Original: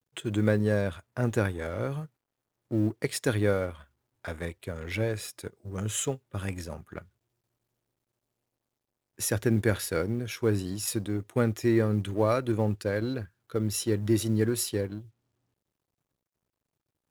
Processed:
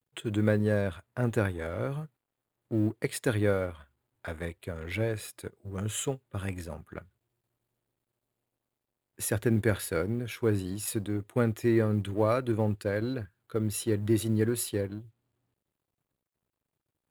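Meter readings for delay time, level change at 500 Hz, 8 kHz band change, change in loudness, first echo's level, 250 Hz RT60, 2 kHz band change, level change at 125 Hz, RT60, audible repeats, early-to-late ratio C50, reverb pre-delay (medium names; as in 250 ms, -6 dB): no echo, -1.0 dB, -3.0 dB, -1.0 dB, no echo, no reverb, -1.0 dB, -1.0 dB, no reverb, no echo, no reverb, no reverb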